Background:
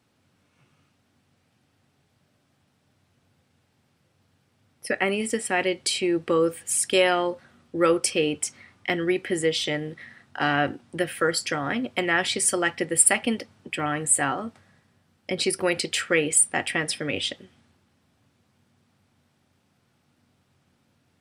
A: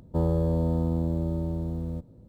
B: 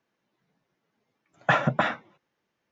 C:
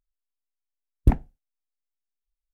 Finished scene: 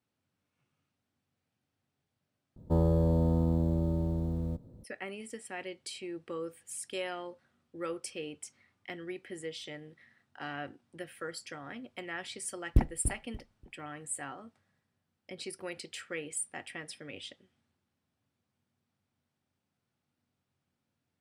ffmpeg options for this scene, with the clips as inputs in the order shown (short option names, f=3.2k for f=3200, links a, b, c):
-filter_complex "[0:a]volume=-17dB[a];[3:a]aecho=1:1:290|580|870:0.316|0.0791|0.0198[b];[a]asplit=2[c][d];[c]atrim=end=2.564[e];[1:a]atrim=end=2.28,asetpts=PTS-STARTPTS,volume=-1.5dB[f];[d]atrim=start=4.836[g];[b]atrim=end=2.53,asetpts=PTS-STARTPTS,volume=-6dB,afade=t=in:d=0.004:c=hsin,afade=t=out:st=2.526:d=0.004:c=hsin,adelay=11690[h];[e][f]acrossfade=d=0.004:c1=hsin:c2=hsin[i];[i][g]acrossfade=d=0.004:c1=hsin:c2=hsin[j];[j][h]amix=inputs=2:normalize=0"